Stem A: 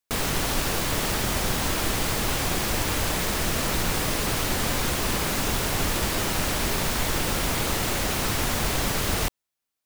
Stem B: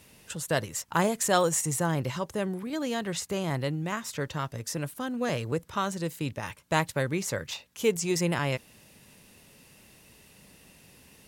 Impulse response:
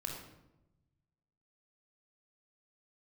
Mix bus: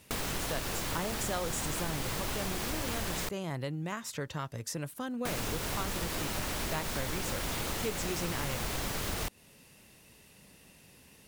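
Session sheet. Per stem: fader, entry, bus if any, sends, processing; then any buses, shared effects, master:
−3.0 dB, 0.00 s, muted 0:03.29–0:05.25, no send, no processing
−2.5 dB, 0.00 s, no send, no processing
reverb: not used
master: downward compressor 3 to 1, threshold −33 dBFS, peak gain reduction 10.5 dB

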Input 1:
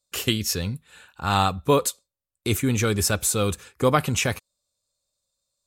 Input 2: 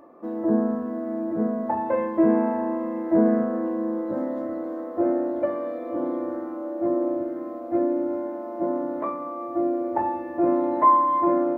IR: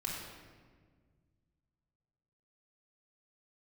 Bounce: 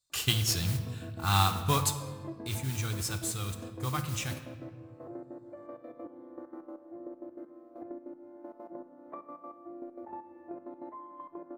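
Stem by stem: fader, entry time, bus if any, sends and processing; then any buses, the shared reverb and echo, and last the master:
0:02.16 −9.5 dB → 0:02.38 −17.5 dB, 0.00 s, send −7.5 dB, octave-band graphic EQ 125/250/500/1,000/4,000/8,000 Hz +9/−5/−10/+4/+5/+3 dB; noise that follows the level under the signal 12 dB
−10.0 dB, 0.10 s, send −12.5 dB, gate pattern ".x.x.x..." 196 BPM −12 dB; downward compressor 6 to 1, threshold −32 dBFS, peak gain reduction 16 dB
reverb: on, RT60 1.6 s, pre-delay 3 ms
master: no processing

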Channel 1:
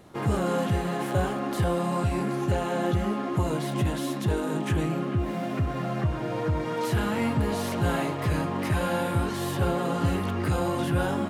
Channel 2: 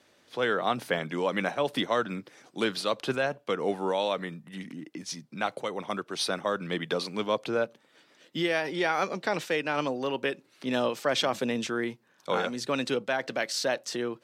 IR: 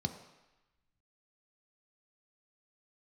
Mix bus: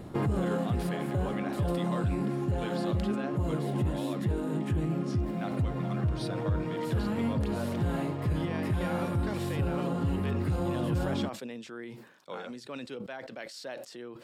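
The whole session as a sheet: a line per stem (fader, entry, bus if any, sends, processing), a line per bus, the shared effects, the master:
+1.5 dB, 0.00 s, no send, automatic ducking −12 dB, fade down 0.65 s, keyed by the second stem
−14.0 dB, 0.00 s, no send, low-shelf EQ 330 Hz −10.5 dB; level that may fall only so fast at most 52 dB per second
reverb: not used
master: low-shelf EQ 460 Hz +11 dB; notch filter 6,100 Hz, Q 11; brickwall limiter −21 dBFS, peak gain reduction 11.5 dB

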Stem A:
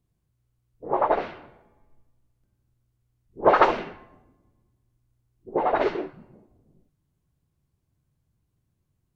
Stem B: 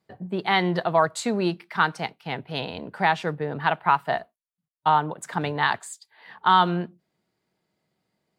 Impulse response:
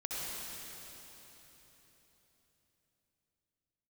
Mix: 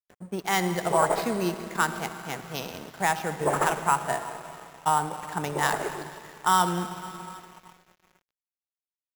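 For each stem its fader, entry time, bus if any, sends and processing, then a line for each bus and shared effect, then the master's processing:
+1.5 dB, 0.00 s, send −22.5 dB, automatic ducking −11 dB, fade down 1.90 s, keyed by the second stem
−5.0 dB, 0.00 s, send −8.5 dB, no processing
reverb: on, RT60 4.0 s, pre-delay 58 ms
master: sample-rate reduction 8,900 Hz, jitter 0%; dead-zone distortion −44.5 dBFS

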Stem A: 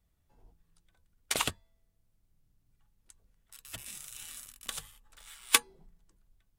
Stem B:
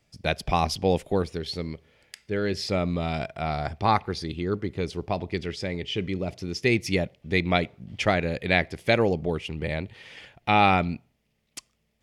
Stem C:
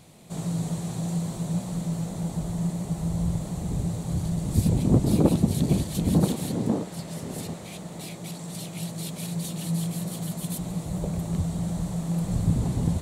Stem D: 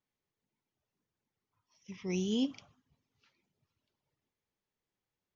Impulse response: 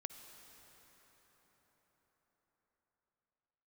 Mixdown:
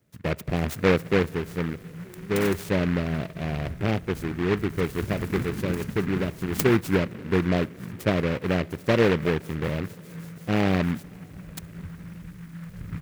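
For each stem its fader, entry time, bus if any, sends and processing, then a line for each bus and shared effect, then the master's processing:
−1.5 dB, 1.05 s, no send, no processing
+2.5 dB, 0.00 s, send −11 dB, high-pass filter 85 Hz
−11.5 dB, 0.45 s, no send, auto-filter notch saw down 0.89 Hz 250–2,900 Hz
−10.0 dB, 0.00 s, no send, no processing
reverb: on, RT60 5.6 s, pre-delay 48 ms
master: inverse Chebyshev band-stop filter 1,100–3,500 Hz, stop band 50 dB; short delay modulated by noise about 1,500 Hz, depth 0.14 ms

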